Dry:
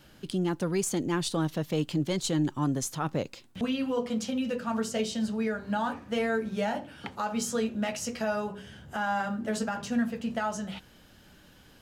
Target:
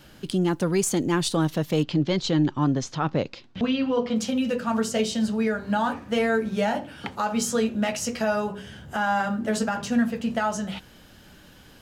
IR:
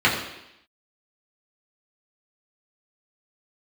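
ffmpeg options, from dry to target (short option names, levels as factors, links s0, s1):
-filter_complex "[0:a]asettb=1/sr,asplit=3[s0][s1][s2];[s0]atrim=end=1.834[s3];[s1]atrim=start=1.83:end=4.16,asetpts=PTS-STARTPTS,afade=t=in:d=0.004:c=qsin,afade=t=out:st=2.326:d=0.004:c=qsin,lowpass=f=5300:w=0.5412,lowpass=f=5300:w=1.3066[s4];[s2]atrim=start=4.156[s5];[s3][s4]acrossfade=d=0.004:c1=hsin:c2=qsin[s6];[s6][s5]acrossfade=d=0.004:c1=qsin:c2=hsin,volume=1.88"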